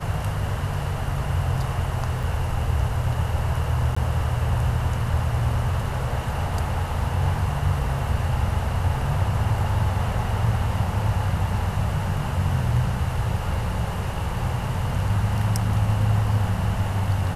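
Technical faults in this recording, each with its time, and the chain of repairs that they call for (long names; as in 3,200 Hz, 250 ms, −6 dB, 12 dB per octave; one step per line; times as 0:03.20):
0:02.23: drop-out 5 ms
0:03.95–0:03.96: drop-out 15 ms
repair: repair the gap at 0:02.23, 5 ms
repair the gap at 0:03.95, 15 ms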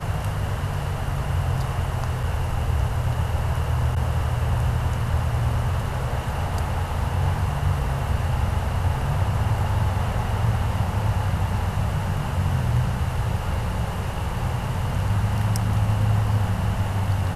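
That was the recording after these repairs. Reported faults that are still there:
none of them is left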